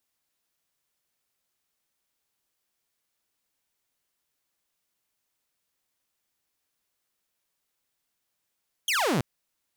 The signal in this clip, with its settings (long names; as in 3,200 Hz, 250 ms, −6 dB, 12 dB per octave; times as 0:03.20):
single falling chirp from 3,400 Hz, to 110 Hz, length 0.33 s saw, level −20 dB